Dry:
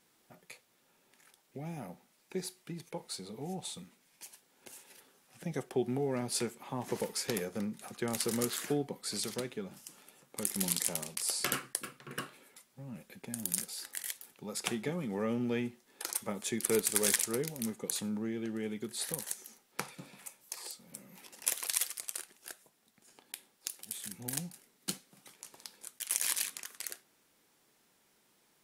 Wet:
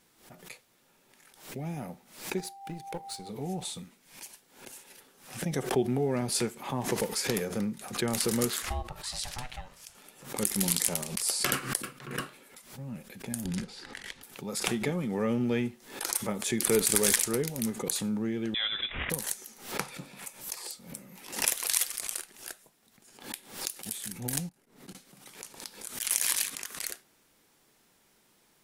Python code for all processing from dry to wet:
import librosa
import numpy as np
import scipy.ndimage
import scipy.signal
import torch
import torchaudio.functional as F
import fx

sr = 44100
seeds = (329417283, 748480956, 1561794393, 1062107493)

y = fx.law_mismatch(x, sr, coded='A', at=(2.36, 3.28), fade=0.02)
y = fx.dmg_tone(y, sr, hz=790.0, level_db=-50.0, at=(2.36, 3.28), fade=0.02)
y = fx.chain(y, sr, fx.weighting(curve='A'),
    fx.ring_mod(carrier_hz=370.0), at=(8.62, 9.95))
y = fx.chain(y, sr, fx.lowpass(hz=3600.0, slope=12),
    fx.low_shelf(hz=350.0, db=12.0),
    fx.notch(hz=610.0, q=6.6), at=(13.45, 14.23))
y = fx.chain(y, sr, fx.cvsd(bps=64000),
    fx.peak_eq(hz=1400.0, db=11.0, octaves=1.8),
    fx.freq_invert(carrier_hz=3700), at=(18.54, 19.1))
y = fx.chain(y, sr, fx.level_steps(step_db=22),
    fx.high_shelf(hz=2000.0, db=-11.5), at=(24.49, 24.95))
y = fx.low_shelf(y, sr, hz=74.0, db=10.0)
y = fx.pre_swell(y, sr, db_per_s=110.0)
y = y * librosa.db_to_amplitude(4.0)